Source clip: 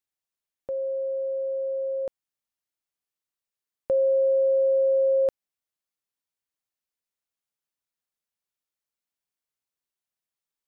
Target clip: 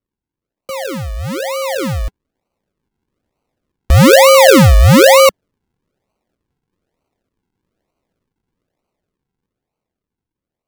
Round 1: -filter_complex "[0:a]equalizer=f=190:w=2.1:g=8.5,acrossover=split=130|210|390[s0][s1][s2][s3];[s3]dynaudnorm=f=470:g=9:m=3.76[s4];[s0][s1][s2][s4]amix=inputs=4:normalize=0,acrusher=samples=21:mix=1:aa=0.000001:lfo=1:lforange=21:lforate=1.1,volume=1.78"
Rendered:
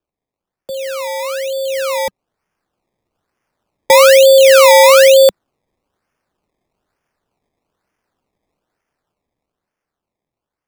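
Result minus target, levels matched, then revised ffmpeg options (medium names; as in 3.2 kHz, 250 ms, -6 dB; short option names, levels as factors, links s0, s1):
decimation with a swept rate: distortion -24 dB
-filter_complex "[0:a]equalizer=f=190:w=2.1:g=8.5,acrossover=split=130|210|390[s0][s1][s2][s3];[s3]dynaudnorm=f=470:g=9:m=3.76[s4];[s0][s1][s2][s4]amix=inputs=4:normalize=0,acrusher=samples=50:mix=1:aa=0.000001:lfo=1:lforange=50:lforate=1.1,volume=1.78"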